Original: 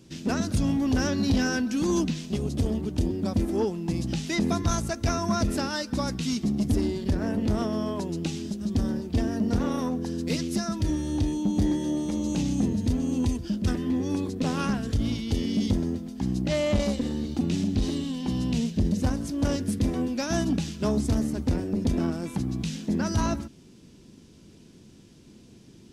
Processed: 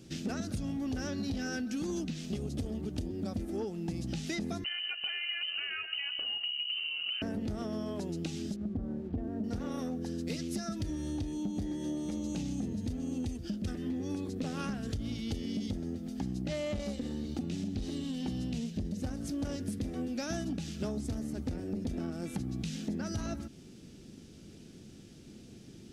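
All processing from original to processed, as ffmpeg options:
ffmpeg -i in.wav -filter_complex "[0:a]asettb=1/sr,asplit=3[link_01][link_02][link_03];[link_01]atrim=end=4.644[link_04];[link_02]atrim=start=4.64:end=7.22,asetpts=PTS-STARTPTS,afade=type=in:duration=0.004:curve=qsin,afade=type=out:start_time=2.576:duration=0.004:curve=qsin,acompressor=threshold=-30dB:ratio=2:attack=3.2:release=140:knee=1:detection=peak,aecho=1:1:135:0.224,atrim=end_sample=113778,lowpass=frequency=2600:width_type=q:width=0.5098,lowpass=frequency=2600:width_type=q:width=0.6013,lowpass=frequency=2600:width_type=q:width=0.9,lowpass=frequency=2600:width_type=q:width=2.563,afreqshift=-3100[link_05];[link_03]atrim=start=7.216[link_06];[link_04][link_05]acrossfade=duration=0.004:curve1=hsin:curve2=qsin[link_07];[link_07][link_06]acrossfade=duration=0.004:curve1=qsin:curve2=hsin,asettb=1/sr,asplit=3[link_08][link_09][link_10];[link_08]atrim=end=8.564[link_11];[link_09]atrim=start=8.56:end=9.44,asetpts=PTS-STARTPTS,afade=type=in:duration=0.004:curve=qsin,afade=type=out:start_time=0.876:duration=0.004:curve=qsin,lowpass=1000,aeval=exprs='sgn(val(0))*max(abs(val(0))-0.0015,0)':channel_layout=same[link_12];[link_10]atrim=start=9.436[link_13];[link_11][link_12]acrossfade=duration=0.004:curve1=hsin:curve2=qsin[link_14];[link_14][link_13]acrossfade=duration=0.004:curve1=qsin:curve2=hsin,bandreject=frequency=1000:width=5.5,acompressor=threshold=-33dB:ratio=6" out.wav

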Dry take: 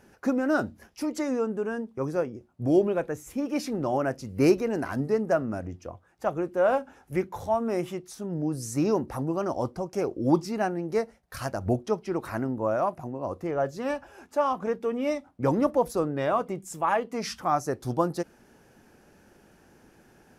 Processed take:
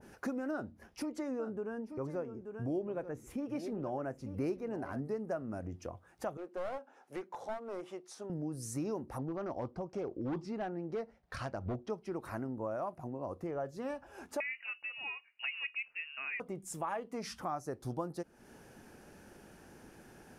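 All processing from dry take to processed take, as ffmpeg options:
ffmpeg -i in.wav -filter_complex "[0:a]asettb=1/sr,asplit=3[link_01][link_02][link_03];[link_01]atrim=end=0.514[link_04];[link_02]atrim=start=0.51:end=5.06,asetpts=PTS-STARTPTS,afade=type=in:duration=0.004:curve=qsin,afade=type=out:start_time=4.546:duration=0.004:curve=qsin,highshelf=frequency=3400:gain=-8.5,aecho=1:1:883:0.211,atrim=end_sample=200655[link_05];[link_03]atrim=start=5.056[link_06];[link_04][link_05]acrossfade=duration=0.004:curve1=hsin:curve2=qsin[link_07];[link_07][link_06]acrossfade=duration=0.004:curve1=qsin:curve2=hsin,asettb=1/sr,asplit=3[link_08][link_09][link_10];[link_08]atrim=end=6.374[link_11];[link_09]atrim=start=6.37:end=8.3,asetpts=PTS-STARTPTS,afade=type=in:duration=0.004:curve=qsin,afade=type=out:start_time=1.926:duration=0.004:curve=qsin,highpass=510,lowpass=5600,equalizer=frequency=2700:width=0.41:gain=-6.5,aeval=exprs='clip(val(0),-1,0.0224)':channel_layout=same[link_12];[link_10]atrim=start=8.296[link_13];[link_11][link_12]acrossfade=duration=0.004:curve1=hsin:curve2=qsin[link_14];[link_14][link_13]acrossfade=duration=0.004:curve1=qsin:curve2=hsin,asettb=1/sr,asplit=3[link_15][link_16][link_17];[link_15]atrim=end=9.184[link_18];[link_16]atrim=start=9.18:end=11.9,asetpts=PTS-STARTPTS,afade=type=in:duration=0.004:curve=qsin,afade=type=out:start_time=2.716:duration=0.004:curve=qsin,volume=22dB,asoftclip=hard,volume=-22dB,lowpass=4400[link_19];[link_17]atrim=start=11.896[link_20];[link_18][link_19]acrossfade=duration=0.004:curve1=hsin:curve2=qsin[link_21];[link_21][link_20]acrossfade=duration=0.004:curve1=qsin:curve2=hsin,asettb=1/sr,asplit=3[link_22][link_23][link_24];[link_22]atrim=end=14.404[link_25];[link_23]atrim=start=14.4:end=16.4,asetpts=PTS-STARTPTS,afade=type=in:duration=0.004:curve=qsin,afade=type=out:start_time=1.996:duration=0.004:curve=qsin,highpass=500,lowpass=frequency=2600:width_type=q:width=0.5098,lowpass=frequency=2600:width_type=q:width=0.6013,lowpass=frequency=2600:width_type=q:width=0.9,lowpass=frequency=2600:width_type=q:width=2.563,afreqshift=-3100,bandreject=frequency=1700:width=27[link_26];[link_24]atrim=start=16.396[link_27];[link_25][link_26]acrossfade=duration=0.004:curve1=hsin:curve2=qsin[link_28];[link_28][link_27]acrossfade=duration=0.004:curve1=qsin:curve2=hsin,equalizer=frequency=9400:width=6.7:gain=6,acompressor=threshold=-42dB:ratio=2.5,adynamicequalizer=threshold=0.002:dfrequency=1500:dqfactor=0.7:tfrequency=1500:tqfactor=0.7:attack=5:release=100:ratio=0.375:range=2:mode=cutabove:tftype=highshelf,volume=1dB" out.wav

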